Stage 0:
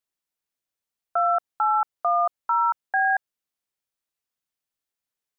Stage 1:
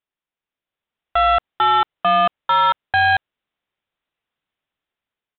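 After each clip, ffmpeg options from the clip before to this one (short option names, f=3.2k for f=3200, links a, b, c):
-af "dynaudnorm=f=330:g=5:m=7.5dB,aresample=8000,volume=15dB,asoftclip=hard,volume=-15dB,aresample=44100,volume=2.5dB"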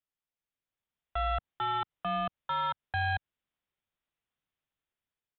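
-filter_complex "[0:a]acrossover=split=170[a][b];[a]acontrast=55[c];[b]alimiter=limit=-16.5dB:level=0:latency=1:release=111[d];[c][d]amix=inputs=2:normalize=0,volume=-8.5dB"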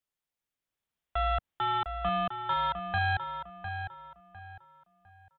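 -filter_complex "[0:a]asplit=2[a][b];[b]adelay=704,lowpass=f=2.5k:p=1,volume=-7.5dB,asplit=2[c][d];[d]adelay=704,lowpass=f=2.5k:p=1,volume=0.32,asplit=2[e][f];[f]adelay=704,lowpass=f=2.5k:p=1,volume=0.32,asplit=2[g][h];[h]adelay=704,lowpass=f=2.5k:p=1,volume=0.32[i];[a][c][e][g][i]amix=inputs=5:normalize=0,volume=2dB"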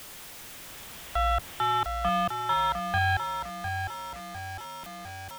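-af "aeval=exprs='val(0)+0.5*0.0133*sgn(val(0))':c=same,volume=2dB"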